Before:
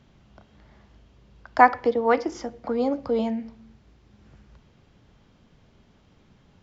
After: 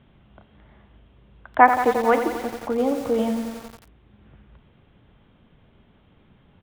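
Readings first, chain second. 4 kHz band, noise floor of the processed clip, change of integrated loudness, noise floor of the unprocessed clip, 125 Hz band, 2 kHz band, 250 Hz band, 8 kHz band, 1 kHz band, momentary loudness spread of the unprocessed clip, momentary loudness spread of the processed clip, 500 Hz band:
+3.0 dB, -58 dBFS, +2.0 dB, -59 dBFS, +2.5 dB, +2.5 dB, +2.5 dB, no reading, +2.5 dB, 15 LU, 14 LU, +2.0 dB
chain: resampled via 8 kHz; bit-crushed delay 88 ms, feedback 80%, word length 6-bit, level -9 dB; trim +1.5 dB

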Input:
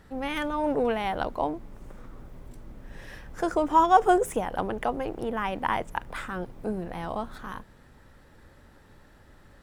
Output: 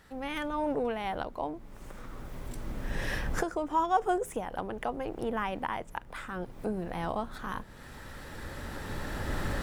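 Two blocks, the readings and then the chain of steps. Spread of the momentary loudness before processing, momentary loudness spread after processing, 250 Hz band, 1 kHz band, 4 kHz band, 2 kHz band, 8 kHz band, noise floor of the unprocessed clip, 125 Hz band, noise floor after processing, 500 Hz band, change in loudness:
20 LU, 15 LU, -4.5 dB, -7.0 dB, -2.5 dB, -2.5 dB, -2.0 dB, -55 dBFS, +2.0 dB, -48 dBFS, -5.5 dB, -7.0 dB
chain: recorder AGC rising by 11 dB/s; tape noise reduction on one side only encoder only; trim -8 dB

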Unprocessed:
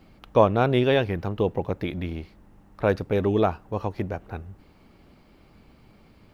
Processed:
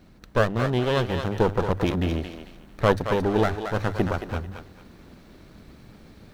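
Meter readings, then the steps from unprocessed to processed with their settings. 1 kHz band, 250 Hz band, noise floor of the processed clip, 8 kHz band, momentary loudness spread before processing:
0.0 dB, +0.5 dB, -51 dBFS, no reading, 14 LU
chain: comb filter that takes the minimum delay 0.5 ms; peaking EQ 2.2 kHz -6 dB 0.34 oct; hum notches 50/100 Hz; gain riding within 5 dB 0.5 s; thinning echo 223 ms, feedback 31%, high-pass 540 Hz, level -6 dB; trim +2 dB

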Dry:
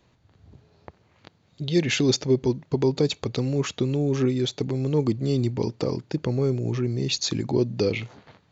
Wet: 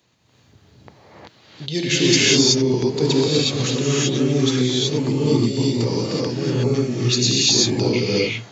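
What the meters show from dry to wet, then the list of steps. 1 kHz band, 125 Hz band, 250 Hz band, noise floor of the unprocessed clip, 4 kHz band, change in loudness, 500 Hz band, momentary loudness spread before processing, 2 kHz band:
+5.5 dB, +4.0 dB, +5.5 dB, -63 dBFS, +12.5 dB, +6.5 dB, +4.5 dB, 5 LU, +9.5 dB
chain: high-pass 96 Hz; treble shelf 2.7 kHz +11 dB; gated-style reverb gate 400 ms rising, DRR -7 dB; trim -3 dB

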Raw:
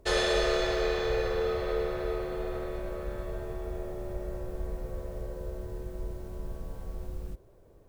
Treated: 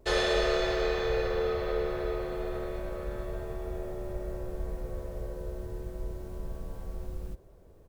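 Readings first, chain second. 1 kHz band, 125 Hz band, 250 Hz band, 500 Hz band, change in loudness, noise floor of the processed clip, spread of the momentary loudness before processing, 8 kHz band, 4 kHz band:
0.0 dB, 0.0 dB, 0.0 dB, 0.0 dB, 0.0 dB, -55 dBFS, 15 LU, no reading, -1.0 dB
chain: vibrato 0.33 Hz 8.9 cents; dynamic bell 9 kHz, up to -5 dB, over -55 dBFS, Q 0.89; delay 571 ms -21.5 dB

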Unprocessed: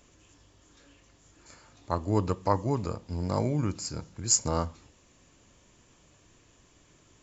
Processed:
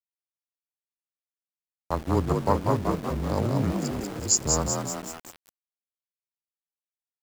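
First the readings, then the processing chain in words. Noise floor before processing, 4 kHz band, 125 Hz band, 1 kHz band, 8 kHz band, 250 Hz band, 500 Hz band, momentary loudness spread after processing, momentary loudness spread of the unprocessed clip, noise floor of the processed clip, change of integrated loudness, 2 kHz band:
-62 dBFS, +3.0 dB, +2.5 dB, +3.5 dB, no reading, +4.0 dB, +4.0 dB, 10 LU, 12 LU, under -85 dBFS, +3.0 dB, +7.0 dB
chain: local Wiener filter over 41 samples; on a send: frequency-shifting echo 190 ms, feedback 58%, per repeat +59 Hz, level -4 dB; on the sum: frequency shift -17 Hz; small samples zeroed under -37 dBFS; trim +2 dB

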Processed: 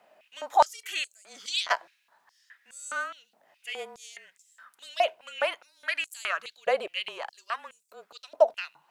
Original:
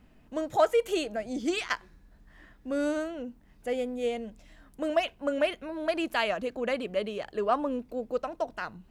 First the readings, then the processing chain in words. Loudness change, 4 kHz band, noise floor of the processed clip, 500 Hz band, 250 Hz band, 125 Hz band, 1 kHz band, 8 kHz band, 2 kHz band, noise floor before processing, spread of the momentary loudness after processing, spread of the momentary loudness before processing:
+1.0 dB, +4.5 dB, -71 dBFS, -2.5 dB, -24.5 dB, no reading, +4.0 dB, +5.0 dB, +3.0 dB, -59 dBFS, 22 LU, 10 LU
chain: frequency shift -30 Hz; step-sequenced high-pass 4.8 Hz 650–7600 Hz; trim +1.5 dB

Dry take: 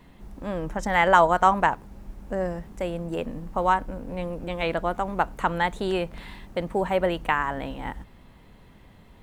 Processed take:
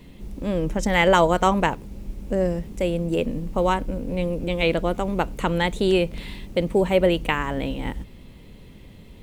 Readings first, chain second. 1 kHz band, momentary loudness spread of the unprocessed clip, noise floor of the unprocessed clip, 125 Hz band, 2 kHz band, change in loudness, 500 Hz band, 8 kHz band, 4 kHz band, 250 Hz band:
-2.5 dB, 16 LU, -52 dBFS, +7.0 dB, +0.5 dB, +2.5 dB, +4.5 dB, no reading, +7.0 dB, +7.0 dB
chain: high-order bell 1.1 kHz -9.5 dB; trim +7 dB

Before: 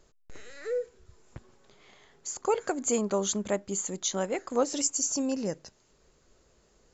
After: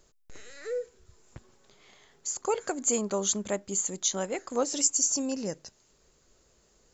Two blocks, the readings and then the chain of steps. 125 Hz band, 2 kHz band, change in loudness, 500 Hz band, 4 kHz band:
-2.0 dB, -1.0 dB, +1.0 dB, -2.0 dB, +1.5 dB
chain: treble shelf 4.6 kHz +8 dB; trim -2 dB

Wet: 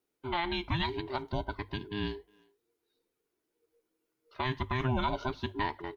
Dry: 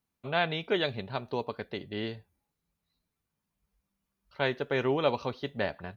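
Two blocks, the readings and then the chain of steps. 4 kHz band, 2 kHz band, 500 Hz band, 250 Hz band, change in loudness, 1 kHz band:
-2.0 dB, -3.5 dB, -7.5 dB, -0.5 dB, -2.5 dB, +1.0 dB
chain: every band turned upside down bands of 500 Hz; peaking EQ 430 Hz +2.5 dB 0.77 oct; hum notches 50/100 Hz; peak limiter -20.5 dBFS, peak gain reduction 8 dB; speakerphone echo 360 ms, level -27 dB

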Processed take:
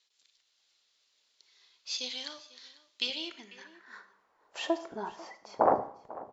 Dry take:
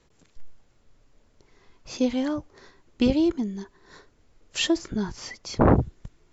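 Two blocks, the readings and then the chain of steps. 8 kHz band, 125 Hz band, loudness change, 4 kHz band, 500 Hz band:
no reading, under -25 dB, -7.5 dB, -2.5 dB, -6.0 dB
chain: on a send: delay 495 ms -20 dB; on the sum: level rider gain up to 5.5 dB; tone controls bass -8 dB, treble +5 dB; Schroeder reverb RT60 0.62 s, combs from 28 ms, DRR 11.5 dB; band-pass sweep 3.9 kHz -> 780 Hz, 2.97–4.59 s

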